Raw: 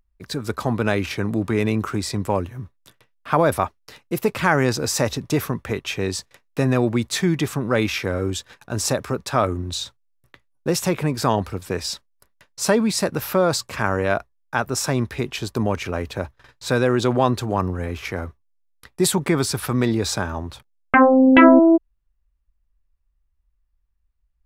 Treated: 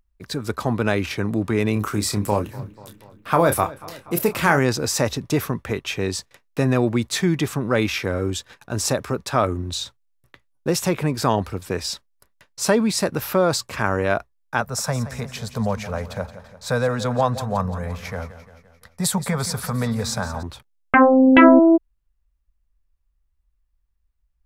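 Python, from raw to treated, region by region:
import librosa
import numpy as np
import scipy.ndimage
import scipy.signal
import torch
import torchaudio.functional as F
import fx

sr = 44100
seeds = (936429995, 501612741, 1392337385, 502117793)

y = fx.chain(x, sr, fx.high_shelf(hz=8500.0, db=12.0),
    fx.doubler(ms=29.0, db=-8),
    fx.echo_filtered(ms=243, feedback_pct=64, hz=4400.0, wet_db=-19.5), at=(1.73, 4.59))
y = fx.chain(y, sr, fx.cheby1_bandstop(low_hz=220.0, high_hz=480.0, order=2),
    fx.peak_eq(hz=2800.0, db=-7.0, octaves=0.67),
    fx.echo_feedback(ms=173, feedback_pct=54, wet_db=-13.5), at=(14.61, 20.43))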